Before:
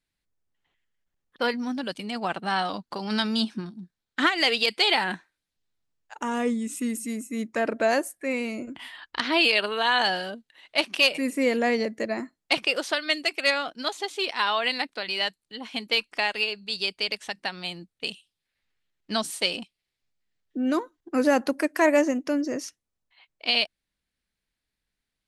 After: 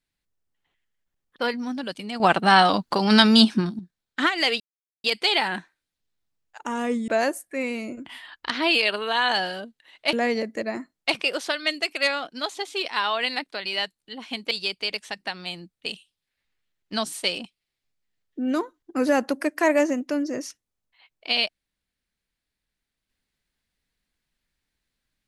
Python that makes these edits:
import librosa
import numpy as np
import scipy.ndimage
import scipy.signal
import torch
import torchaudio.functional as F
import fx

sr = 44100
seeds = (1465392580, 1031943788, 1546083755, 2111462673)

y = fx.edit(x, sr, fx.clip_gain(start_s=2.2, length_s=1.59, db=10.5),
    fx.insert_silence(at_s=4.6, length_s=0.44),
    fx.cut(start_s=6.64, length_s=1.14),
    fx.cut(start_s=10.83, length_s=0.73),
    fx.cut(start_s=15.94, length_s=0.75), tone=tone)